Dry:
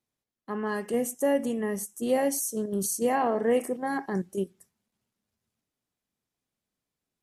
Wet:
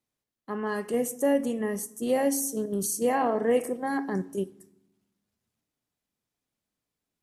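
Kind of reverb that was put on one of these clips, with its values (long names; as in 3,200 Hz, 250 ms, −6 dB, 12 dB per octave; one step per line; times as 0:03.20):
feedback delay network reverb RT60 0.83 s, low-frequency decay 1.55×, high-frequency decay 0.6×, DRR 14.5 dB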